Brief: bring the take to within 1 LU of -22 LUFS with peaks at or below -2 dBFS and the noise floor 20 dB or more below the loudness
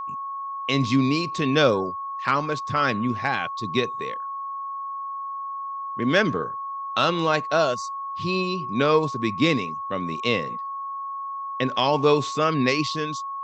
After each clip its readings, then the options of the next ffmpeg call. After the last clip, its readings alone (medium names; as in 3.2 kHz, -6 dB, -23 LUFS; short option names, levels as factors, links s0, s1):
steady tone 1.1 kHz; tone level -29 dBFS; loudness -24.5 LUFS; peak level -6.0 dBFS; loudness target -22.0 LUFS
-> -af "bandreject=f=1100:w=30"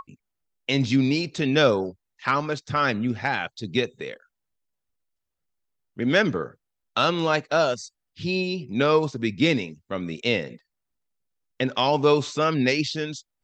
steady tone not found; loudness -24.0 LUFS; peak level -6.5 dBFS; loudness target -22.0 LUFS
-> -af "volume=1.26"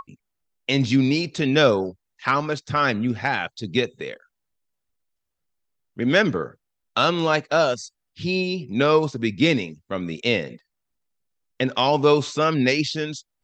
loudness -22.0 LUFS; peak level -4.5 dBFS; noise floor -79 dBFS